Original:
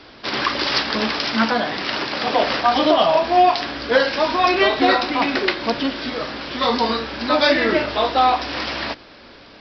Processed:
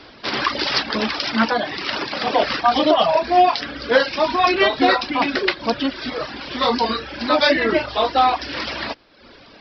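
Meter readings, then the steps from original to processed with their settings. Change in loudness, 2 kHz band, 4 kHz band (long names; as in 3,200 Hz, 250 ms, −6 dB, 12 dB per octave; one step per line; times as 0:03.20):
−0.5 dB, −0.5 dB, −0.5 dB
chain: reverb reduction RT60 0.81 s
level +1 dB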